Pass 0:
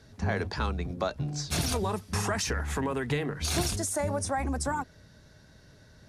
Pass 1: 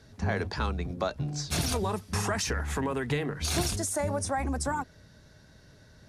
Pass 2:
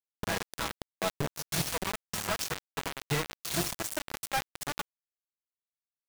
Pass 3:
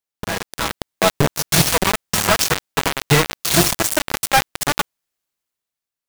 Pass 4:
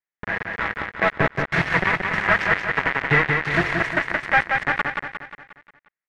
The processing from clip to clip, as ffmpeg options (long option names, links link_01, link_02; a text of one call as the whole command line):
ffmpeg -i in.wav -af anull out.wav
ffmpeg -i in.wav -af "equalizer=frequency=320:width_type=o:width=0.28:gain=-4.5,aecho=1:1:6.1:0.91,acrusher=bits=3:mix=0:aa=0.000001,volume=-5.5dB" out.wav
ffmpeg -i in.wav -af "dynaudnorm=framelen=110:gausssize=13:maxgain=9dB,volume=7dB" out.wav
ffmpeg -i in.wav -filter_complex "[0:a]lowpass=frequency=1900:width_type=q:width=4.4,asplit=2[link_01][link_02];[link_02]aecho=0:1:178|356|534|712|890|1068:0.596|0.298|0.149|0.0745|0.0372|0.0186[link_03];[link_01][link_03]amix=inputs=2:normalize=0,volume=-7dB" out.wav